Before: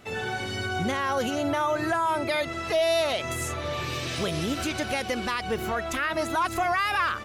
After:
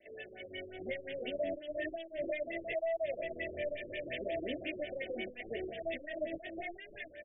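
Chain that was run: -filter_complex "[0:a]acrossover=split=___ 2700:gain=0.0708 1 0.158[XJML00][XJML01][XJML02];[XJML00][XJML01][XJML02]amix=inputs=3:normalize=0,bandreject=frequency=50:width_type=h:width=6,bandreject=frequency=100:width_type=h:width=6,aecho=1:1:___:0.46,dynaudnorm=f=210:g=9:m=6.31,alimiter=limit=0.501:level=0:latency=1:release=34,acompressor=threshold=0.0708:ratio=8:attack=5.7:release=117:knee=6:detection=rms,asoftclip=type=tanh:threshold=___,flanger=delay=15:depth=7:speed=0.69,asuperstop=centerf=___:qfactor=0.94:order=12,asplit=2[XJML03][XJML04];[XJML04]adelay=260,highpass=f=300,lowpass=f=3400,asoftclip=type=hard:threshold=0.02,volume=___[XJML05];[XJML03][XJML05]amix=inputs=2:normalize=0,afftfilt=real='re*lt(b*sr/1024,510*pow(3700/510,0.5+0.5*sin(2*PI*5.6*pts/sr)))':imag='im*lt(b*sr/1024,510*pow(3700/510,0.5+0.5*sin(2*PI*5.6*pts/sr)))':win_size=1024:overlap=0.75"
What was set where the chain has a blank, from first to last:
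500, 3.3, 0.0422, 1100, 0.0708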